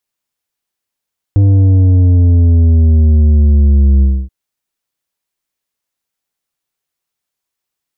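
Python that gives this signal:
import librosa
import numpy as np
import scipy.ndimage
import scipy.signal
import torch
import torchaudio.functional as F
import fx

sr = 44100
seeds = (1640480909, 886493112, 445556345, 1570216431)

y = fx.sub_drop(sr, level_db=-6.0, start_hz=100.0, length_s=2.93, drive_db=8, fade_s=0.27, end_hz=65.0)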